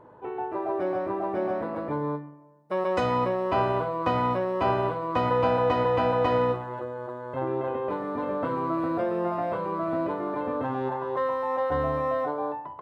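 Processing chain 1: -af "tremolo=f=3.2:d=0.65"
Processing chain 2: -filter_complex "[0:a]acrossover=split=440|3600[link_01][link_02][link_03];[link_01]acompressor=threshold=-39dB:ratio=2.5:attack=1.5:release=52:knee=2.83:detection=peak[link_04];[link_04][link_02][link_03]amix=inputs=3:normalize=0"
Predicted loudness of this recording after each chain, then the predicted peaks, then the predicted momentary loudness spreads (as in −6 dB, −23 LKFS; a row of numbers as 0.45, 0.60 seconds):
−30.5, −29.0 LKFS; −12.5, −13.5 dBFS; 8, 9 LU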